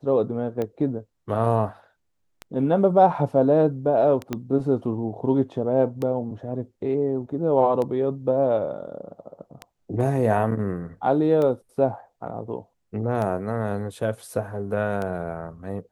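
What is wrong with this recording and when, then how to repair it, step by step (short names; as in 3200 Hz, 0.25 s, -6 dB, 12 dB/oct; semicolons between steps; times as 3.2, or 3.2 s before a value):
tick 33 1/3 rpm -17 dBFS
4.33 pop -13 dBFS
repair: de-click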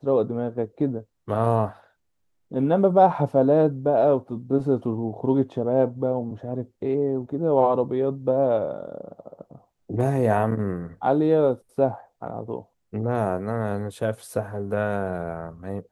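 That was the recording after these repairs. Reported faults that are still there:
4.33 pop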